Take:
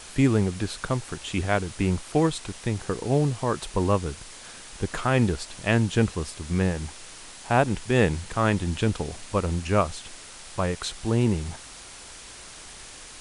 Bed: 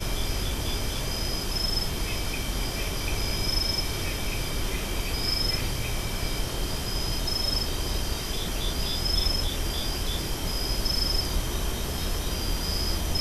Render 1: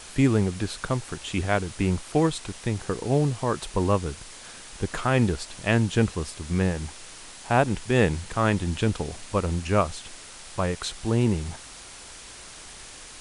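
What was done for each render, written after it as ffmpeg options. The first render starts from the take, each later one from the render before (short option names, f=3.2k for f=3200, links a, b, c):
-af anull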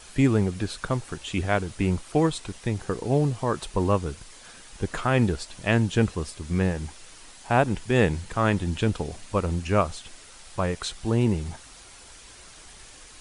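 -af "afftdn=nr=6:nf=-44"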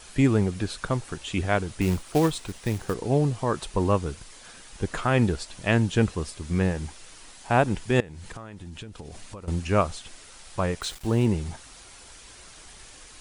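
-filter_complex "[0:a]asettb=1/sr,asplit=3[a][b][c];[a]atrim=end=1.814[d];[b]atrim=start=1.81:end=2.94,asetpts=PTS-STARTPTS,afade=t=in:d=0.004:c=qsin,afade=t=out:st=1.126:d=0.004:c=qsin,acrusher=bits=4:mode=log:mix=0:aa=0.000001[e];[c]atrim=start=2.936[f];[d][e]acrossfade=d=0.004:c1=hsin:c2=qsin[g];[g][f]acrossfade=d=0.004:c1=qsin:c2=hsin,asettb=1/sr,asplit=3[h][i][j];[h]atrim=end=8.004[k];[i]atrim=start=8:end=9.48,asetpts=PTS-STARTPTS,afade=t=in:d=0.004:c=qsin,afade=t=out:st=1.476:d=0.004:c=qsin,acompressor=threshold=-35dB:ratio=20:attack=3.2:release=140:knee=1:detection=peak[l];[j]atrim=start=9.476[m];[k][l]acrossfade=d=0.004:c1=hsin:c2=qsin[n];[n][m]acrossfade=d=0.004:c1=qsin:c2=hsin,asettb=1/sr,asplit=3[o][p][q];[o]atrim=end=10.814[r];[p]atrim=start=10.81:end=11.26,asetpts=PTS-STARTPTS,afade=t=in:d=0.004:c=qsin,afade=t=out:st=0.446:d=0.004:c=qsin,aeval=exprs='val(0)*gte(abs(val(0)),0.01)':c=same[s];[q]atrim=start=11.256[t];[r][s]acrossfade=d=0.004:c1=hsin:c2=qsin[u];[u][t]acrossfade=d=0.004:c1=qsin:c2=hsin"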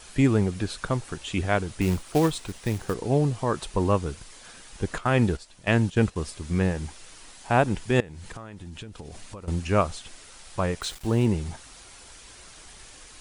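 -filter_complex "[0:a]asettb=1/sr,asplit=3[a][b][c];[a]atrim=end=4.984[d];[b]atrim=start=4.98:end=6.16,asetpts=PTS-STARTPTS,afade=t=in:d=0.004:c=qsin,afade=t=out:st=1.176:d=0.004:c=qsin,agate=range=-10dB:threshold=-31dB:ratio=16:release=100:detection=peak[e];[c]atrim=start=6.156[f];[d][e]acrossfade=d=0.004:c1=hsin:c2=qsin[g];[g][f]acrossfade=d=0.004:c1=qsin:c2=hsin"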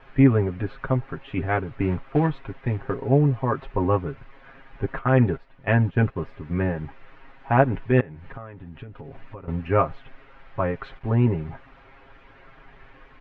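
-af "lowpass=f=2.2k:w=0.5412,lowpass=f=2.2k:w=1.3066,aecho=1:1:7.4:0.77"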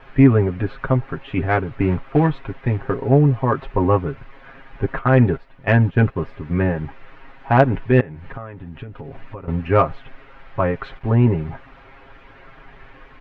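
-af "acontrast=32"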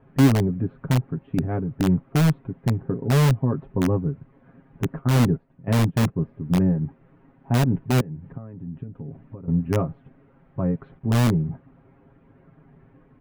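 -filter_complex "[0:a]bandpass=f=180:t=q:w=1.8:csg=0,asplit=2[a][b];[b]aeval=exprs='(mod(5.96*val(0)+1,2)-1)/5.96':c=same,volume=-5dB[c];[a][c]amix=inputs=2:normalize=0"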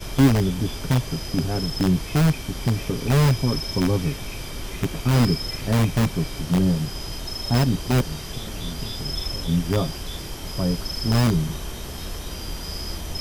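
-filter_complex "[1:a]volume=-3.5dB[a];[0:a][a]amix=inputs=2:normalize=0"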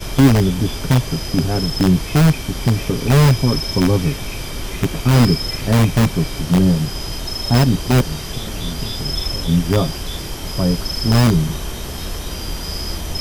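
-af "volume=6dB,alimiter=limit=-1dB:level=0:latency=1"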